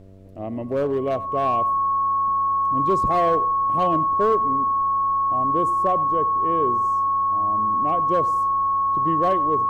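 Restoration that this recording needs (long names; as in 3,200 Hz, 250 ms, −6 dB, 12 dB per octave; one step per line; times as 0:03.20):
hum removal 95.7 Hz, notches 7
notch filter 1,100 Hz, Q 30
downward expander −16 dBFS, range −21 dB
echo removal 95 ms −20 dB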